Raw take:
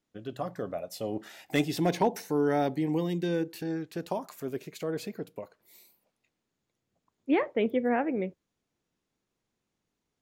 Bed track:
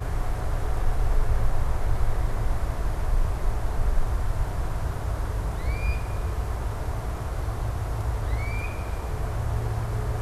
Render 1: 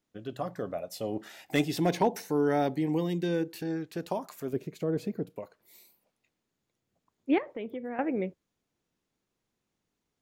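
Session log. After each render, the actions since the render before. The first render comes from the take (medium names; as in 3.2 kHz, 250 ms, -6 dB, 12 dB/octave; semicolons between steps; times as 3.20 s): 4.53–5.30 s: tilt shelf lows +7 dB, about 630 Hz; 7.38–7.99 s: compression 2.5:1, threshold -38 dBFS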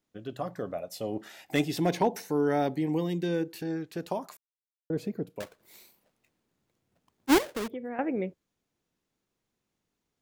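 4.37–4.90 s: mute; 5.40–7.68 s: square wave that keeps the level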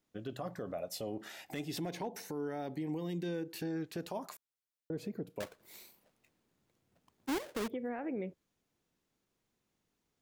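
compression 6:1, threshold -32 dBFS, peak gain reduction 13 dB; peak limiter -30 dBFS, peak gain reduction 9.5 dB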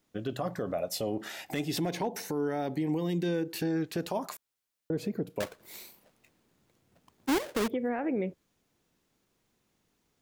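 trim +7.5 dB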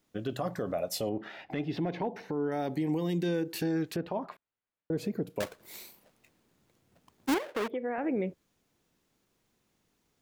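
1.09–2.52 s: distance through air 330 m; 3.96–4.91 s: distance through air 430 m; 7.34–7.98 s: tone controls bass -13 dB, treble -12 dB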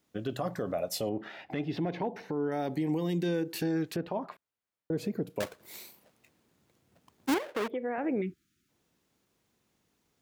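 high-pass 43 Hz; 8.21–8.69 s: spectral selection erased 400–1200 Hz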